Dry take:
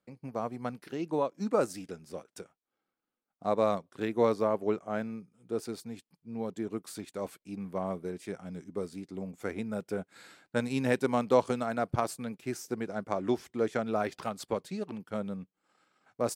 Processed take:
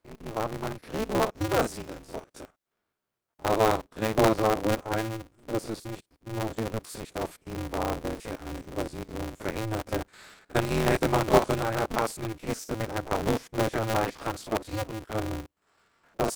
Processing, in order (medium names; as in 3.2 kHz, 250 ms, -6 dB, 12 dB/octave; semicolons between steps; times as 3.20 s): spectrogram pixelated in time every 50 ms; polarity switched at an audio rate 110 Hz; trim +5 dB